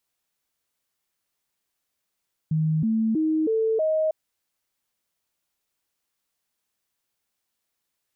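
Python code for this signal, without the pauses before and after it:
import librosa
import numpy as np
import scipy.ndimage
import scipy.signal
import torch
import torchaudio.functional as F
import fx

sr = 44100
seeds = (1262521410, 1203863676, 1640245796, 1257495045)

y = fx.stepped_sweep(sr, from_hz=157.0, direction='up', per_octave=2, tones=5, dwell_s=0.32, gap_s=0.0, level_db=-19.5)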